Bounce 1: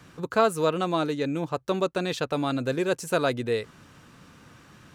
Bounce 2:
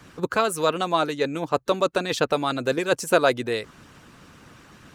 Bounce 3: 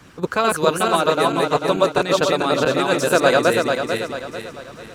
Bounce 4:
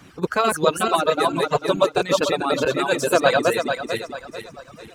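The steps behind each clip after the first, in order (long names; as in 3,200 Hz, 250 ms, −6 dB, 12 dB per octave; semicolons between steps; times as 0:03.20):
harmonic and percussive parts rebalanced harmonic −10 dB; level +7 dB
feedback delay that plays each chunk backwards 221 ms, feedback 63%, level −0.5 dB; level +2 dB
spectral magnitudes quantised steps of 15 dB; reverb reduction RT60 1.5 s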